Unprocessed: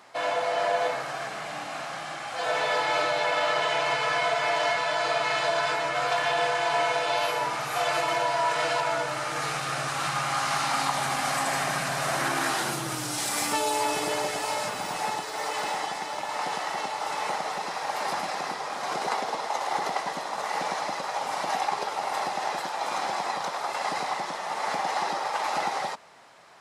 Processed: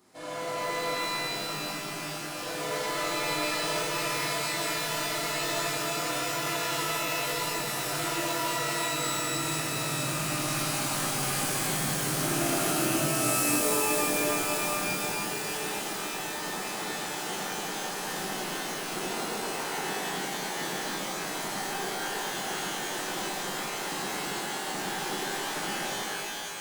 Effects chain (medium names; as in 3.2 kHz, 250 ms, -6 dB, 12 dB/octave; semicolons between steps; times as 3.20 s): FFT filter 370 Hz 0 dB, 640 Hz -15 dB, 2.8 kHz -14 dB, 12 kHz +2 dB; pitch-shifted reverb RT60 3 s, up +12 st, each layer -2 dB, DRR -8 dB; trim -3.5 dB